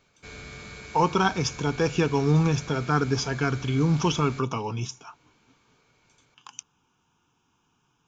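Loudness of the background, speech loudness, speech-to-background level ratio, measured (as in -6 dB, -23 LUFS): -41.5 LUFS, -25.0 LUFS, 16.5 dB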